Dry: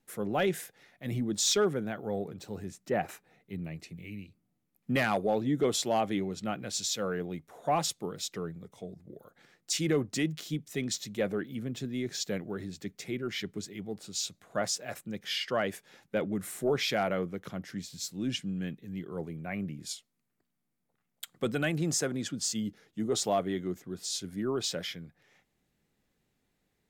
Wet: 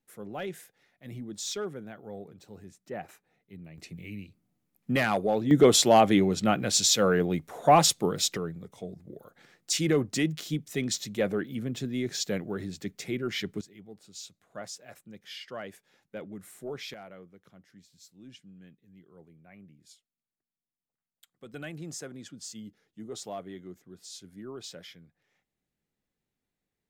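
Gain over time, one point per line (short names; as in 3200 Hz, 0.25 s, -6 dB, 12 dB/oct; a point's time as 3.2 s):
-8 dB
from 3.78 s +2 dB
from 5.51 s +9.5 dB
from 8.37 s +3 dB
from 13.61 s -9.5 dB
from 16.94 s -17 dB
from 21.54 s -10 dB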